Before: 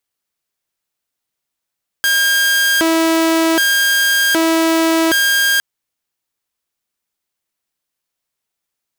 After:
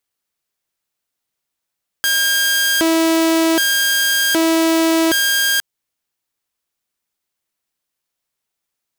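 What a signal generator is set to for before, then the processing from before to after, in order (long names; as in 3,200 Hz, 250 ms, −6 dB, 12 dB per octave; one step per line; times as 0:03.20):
siren hi-lo 326–1,610 Hz 0.65 per second saw −9 dBFS 3.56 s
dynamic equaliser 1,400 Hz, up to −4 dB, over −30 dBFS, Q 0.94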